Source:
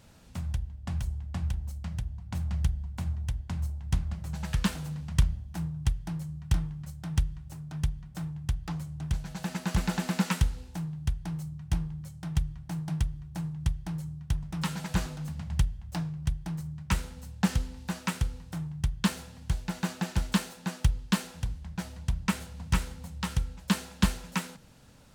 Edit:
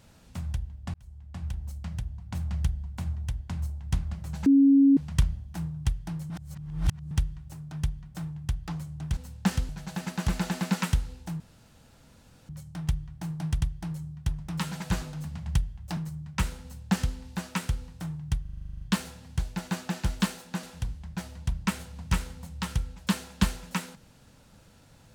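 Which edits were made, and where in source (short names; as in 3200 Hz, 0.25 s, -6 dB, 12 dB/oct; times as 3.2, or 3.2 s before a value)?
0.94–1.72 fade in
4.46–4.97 bleep 276 Hz -14.5 dBFS
6.3–7.11 reverse
10.88–11.97 room tone
13.09–13.65 cut
16.01–16.49 cut
17.15–17.67 copy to 9.17
18.93 stutter 0.04 s, 11 plays
20.75–21.24 cut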